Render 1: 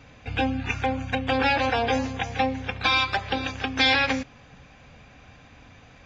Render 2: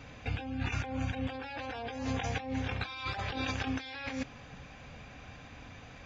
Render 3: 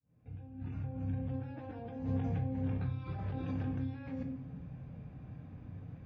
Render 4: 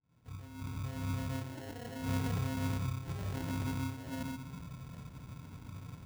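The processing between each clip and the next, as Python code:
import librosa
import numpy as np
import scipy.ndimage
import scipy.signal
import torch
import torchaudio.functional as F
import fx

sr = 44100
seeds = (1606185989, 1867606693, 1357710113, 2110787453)

y1 = fx.over_compress(x, sr, threshold_db=-32.0, ratio=-1.0)
y1 = F.gain(torch.from_numpy(y1), -5.0).numpy()
y2 = fx.fade_in_head(y1, sr, length_s=1.55)
y2 = fx.bandpass_q(y2, sr, hz=140.0, q=1.2)
y2 = fx.room_shoebox(y2, sr, seeds[0], volume_m3=89.0, walls='mixed', distance_m=0.53)
y2 = F.gain(torch.from_numpy(y2), 5.0).numpy()
y3 = fx.sample_hold(y2, sr, seeds[1], rate_hz=1200.0, jitter_pct=0)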